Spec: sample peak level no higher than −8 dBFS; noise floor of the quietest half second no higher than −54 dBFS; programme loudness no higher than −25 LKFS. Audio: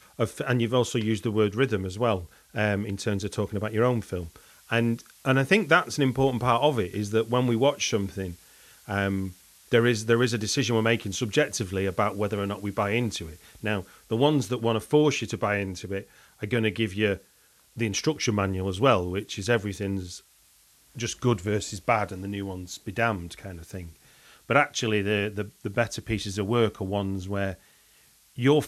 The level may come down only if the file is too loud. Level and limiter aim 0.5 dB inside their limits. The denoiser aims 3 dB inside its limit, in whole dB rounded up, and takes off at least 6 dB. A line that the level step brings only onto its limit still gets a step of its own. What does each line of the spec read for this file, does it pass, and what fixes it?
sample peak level −4.5 dBFS: out of spec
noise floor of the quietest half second −60 dBFS: in spec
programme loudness −26.5 LKFS: in spec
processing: brickwall limiter −8.5 dBFS

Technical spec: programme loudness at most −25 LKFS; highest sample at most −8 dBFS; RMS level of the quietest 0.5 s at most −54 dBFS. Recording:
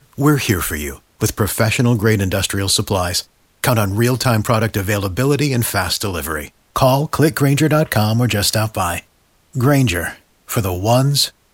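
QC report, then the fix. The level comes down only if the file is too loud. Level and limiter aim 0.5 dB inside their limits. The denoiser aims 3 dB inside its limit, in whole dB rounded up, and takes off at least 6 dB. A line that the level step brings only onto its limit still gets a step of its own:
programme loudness −17.0 LKFS: out of spec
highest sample −2.0 dBFS: out of spec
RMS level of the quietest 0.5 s −56 dBFS: in spec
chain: level −8.5 dB

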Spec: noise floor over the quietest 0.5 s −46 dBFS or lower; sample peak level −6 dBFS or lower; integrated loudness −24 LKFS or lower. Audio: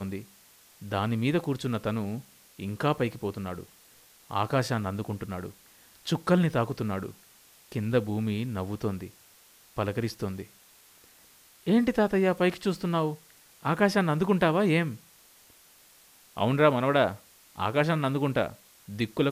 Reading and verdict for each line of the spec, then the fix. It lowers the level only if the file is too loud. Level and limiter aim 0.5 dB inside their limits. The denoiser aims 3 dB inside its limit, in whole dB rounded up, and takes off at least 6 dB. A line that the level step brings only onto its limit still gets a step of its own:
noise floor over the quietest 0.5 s −57 dBFS: in spec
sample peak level −7.0 dBFS: in spec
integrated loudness −28.0 LKFS: in spec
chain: no processing needed

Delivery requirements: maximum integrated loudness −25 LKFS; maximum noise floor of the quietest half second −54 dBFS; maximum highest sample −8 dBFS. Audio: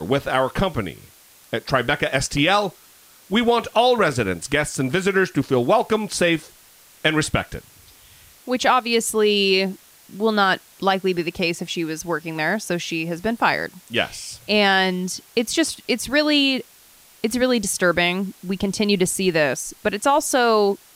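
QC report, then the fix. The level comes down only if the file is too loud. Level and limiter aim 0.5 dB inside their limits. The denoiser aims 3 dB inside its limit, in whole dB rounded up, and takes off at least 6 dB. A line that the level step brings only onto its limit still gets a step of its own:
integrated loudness −20.5 LKFS: out of spec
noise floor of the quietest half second −50 dBFS: out of spec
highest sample −5.5 dBFS: out of spec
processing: level −5 dB

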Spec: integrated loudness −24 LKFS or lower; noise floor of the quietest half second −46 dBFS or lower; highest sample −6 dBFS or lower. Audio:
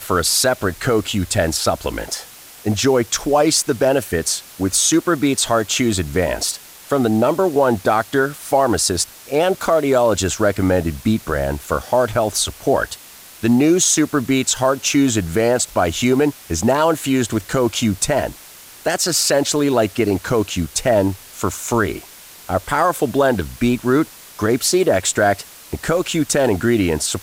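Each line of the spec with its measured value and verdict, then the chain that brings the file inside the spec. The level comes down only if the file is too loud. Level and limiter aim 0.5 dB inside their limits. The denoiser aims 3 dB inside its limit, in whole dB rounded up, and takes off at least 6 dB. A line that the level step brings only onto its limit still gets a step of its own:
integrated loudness −18.0 LKFS: out of spec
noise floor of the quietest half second −41 dBFS: out of spec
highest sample −5.0 dBFS: out of spec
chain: level −6.5 dB

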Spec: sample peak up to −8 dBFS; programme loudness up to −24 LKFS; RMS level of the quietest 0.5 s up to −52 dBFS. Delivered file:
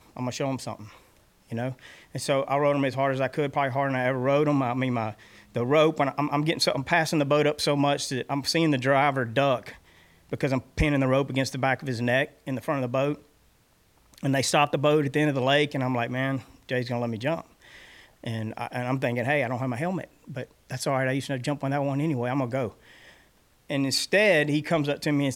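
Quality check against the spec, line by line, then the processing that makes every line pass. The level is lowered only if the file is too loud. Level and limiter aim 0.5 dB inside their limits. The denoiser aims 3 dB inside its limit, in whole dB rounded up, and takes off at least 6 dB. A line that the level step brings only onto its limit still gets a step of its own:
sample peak −7.0 dBFS: out of spec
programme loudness −25.5 LKFS: in spec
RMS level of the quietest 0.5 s −62 dBFS: in spec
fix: brickwall limiter −8.5 dBFS

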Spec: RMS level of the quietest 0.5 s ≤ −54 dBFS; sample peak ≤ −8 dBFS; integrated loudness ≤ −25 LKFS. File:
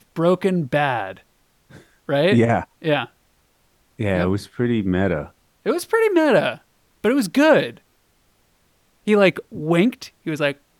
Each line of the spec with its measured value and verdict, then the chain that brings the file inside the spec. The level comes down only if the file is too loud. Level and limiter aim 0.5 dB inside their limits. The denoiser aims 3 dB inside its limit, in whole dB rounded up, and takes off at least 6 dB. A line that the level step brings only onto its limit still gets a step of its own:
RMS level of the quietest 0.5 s −62 dBFS: in spec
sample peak −4.5 dBFS: out of spec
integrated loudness −20.0 LKFS: out of spec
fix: level −5.5 dB

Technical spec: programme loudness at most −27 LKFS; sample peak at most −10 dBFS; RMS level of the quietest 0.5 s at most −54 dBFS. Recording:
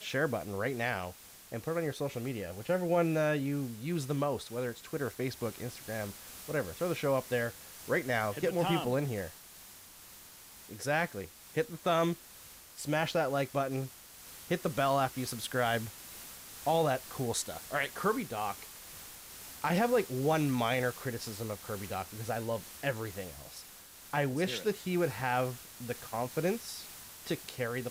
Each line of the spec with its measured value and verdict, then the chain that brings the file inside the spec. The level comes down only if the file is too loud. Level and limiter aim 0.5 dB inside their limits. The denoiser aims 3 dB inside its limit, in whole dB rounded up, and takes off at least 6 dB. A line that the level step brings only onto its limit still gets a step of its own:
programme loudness −33.5 LKFS: in spec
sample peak −18.5 dBFS: in spec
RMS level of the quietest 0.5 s −53 dBFS: out of spec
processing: broadband denoise 6 dB, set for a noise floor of −53 dBFS

